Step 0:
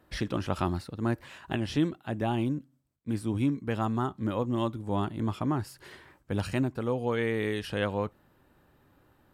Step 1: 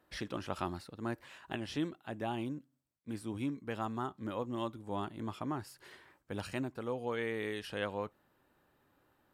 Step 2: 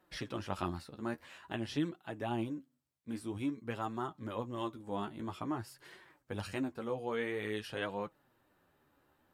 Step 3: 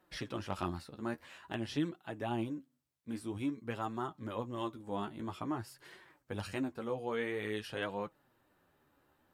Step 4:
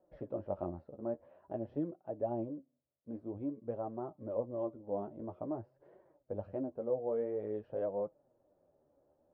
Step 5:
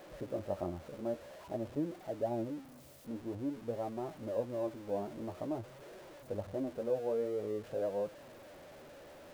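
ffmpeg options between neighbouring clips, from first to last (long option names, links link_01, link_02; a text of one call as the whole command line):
ffmpeg -i in.wav -af "lowshelf=frequency=210:gain=-9.5,volume=-5.5dB" out.wav
ffmpeg -i in.wav -af "flanger=delay=5.2:depth=9.4:regen=28:speed=0.5:shape=triangular,volume=3.5dB" out.wav
ffmpeg -i in.wav -af "asoftclip=type=hard:threshold=-23.5dB" out.wav
ffmpeg -i in.wav -af "lowpass=frequency=590:width_type=q:width=4.9,volume=-5dB" out.wav
ffmpeg -i in.wav -af "aeval=exprs='val(0)+0.5*0.00398*sgn(val(0))':channel_layout=same" out.wav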